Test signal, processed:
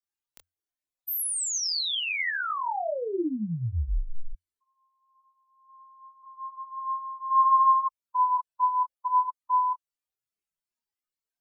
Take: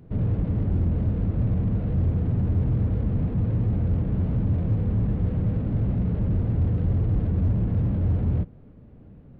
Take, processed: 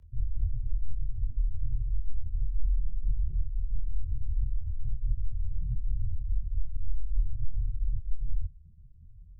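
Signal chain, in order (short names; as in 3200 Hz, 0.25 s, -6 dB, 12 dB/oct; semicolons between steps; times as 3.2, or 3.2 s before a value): spectral contrast raised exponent 3.2; frequency shift -88 Hz; chorus voices 4, 0.58 Hz, delay 25 ms, depth 1.9 ms; gain -2 dB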